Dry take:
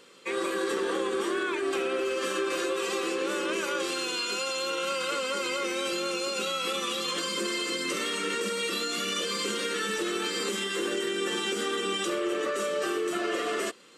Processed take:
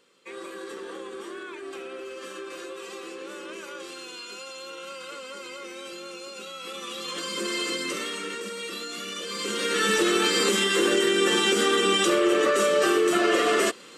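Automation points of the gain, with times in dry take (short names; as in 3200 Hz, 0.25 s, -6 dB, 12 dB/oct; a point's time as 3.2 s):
6.51 s -9 dB
7.63 s +2.5 dB
8.41 s -4.5 dB
9.21 s -4.5 dB
9.88 s +8 dB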